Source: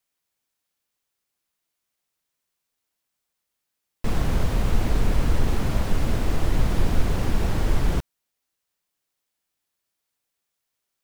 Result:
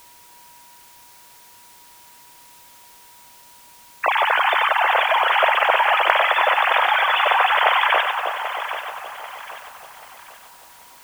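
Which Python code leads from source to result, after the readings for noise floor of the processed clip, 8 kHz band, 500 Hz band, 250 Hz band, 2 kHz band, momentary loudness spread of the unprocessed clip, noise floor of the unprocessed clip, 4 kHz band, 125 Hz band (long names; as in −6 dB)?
−48 dBFS, can't be measured, +9.0 dB, below −20 dB, +20.5 dB, 3 LU, −81 dBFS, +16.0 dB, below −35 dB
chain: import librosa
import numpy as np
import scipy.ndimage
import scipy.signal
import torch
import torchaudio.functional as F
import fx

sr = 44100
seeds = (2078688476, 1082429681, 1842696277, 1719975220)

p1 = fx.sine_speech(x, sr)
p2 = scipy.signal.sosfilt(scipy.signal.butter(6, 600.0, 'highpass', fs=sr, output='sos'), p1)
p3 = fx.over_compress(p2, sr, threshold_db=-28.0, ratio=-1.0)
p4 = p2 + (p3 * librosa.db_to_amplitude(-2.5))
p5 = p4 + 10.0 ** (-50.0 / 20.0) * np.sin(2.0 * np.pi * 960.0 * np.arange(len(p4)) / sr)
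p6 = p5 + fx.echo_split(p5, sr, split_hz=1300.0, low_ms=313, high_ms=94, feedback_pct=52, wet_db=-5.0, dry=0)
p7 = fx.quant_dither(p6, sr, seeds[0], bits=8, dither='triangular')
p8 = fx.echo_feedback(p7, sr, ms=787, feedback_pct=37, wet_db=-11)
y = p8 * librosa.db_to_amplitude(-1.0)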